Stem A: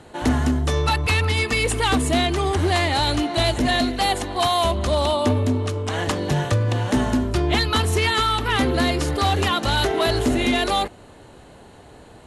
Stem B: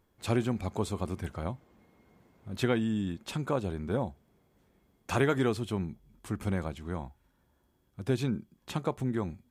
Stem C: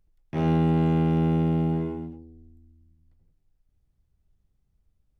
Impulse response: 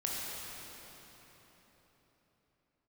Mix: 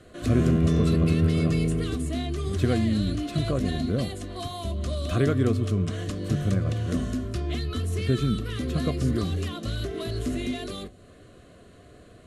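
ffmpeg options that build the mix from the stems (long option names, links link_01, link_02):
-filter_complex "[0:a]acrossover=split=330|690|3400[link_01][link_02][link_03][link_04];[link_01]acompressor=threshold=-22dB:ratio=4[link_05];[link_02]acompressor=threshold=-38dB:ratio=4[link_06];[link_03]acompressor=threshold=-38dB:ratio=4[link_07];[link_04]acompressor=threshold=-36dB:ratio=4[link_08];[link_05][link_06][link_07][link_08]amix=inputs=4:normalize=0,flanger=delay=9.5:depth=2.4:regen=-64:speed=1.5:shape=sinusoidal,volume=-2.5dB[link_09];[1:a]lowshelf=frequency=360:gain=8.5,volume=-3.5dB[link_10];[2:a]volume=-3.5dB[link_11];[link_09][link_10][link_11]amix=inputs=3:normalize=0,asuperstop=centerf=870:order=8:qfactor=3.3,lowshelf=frequency=450:gain=3"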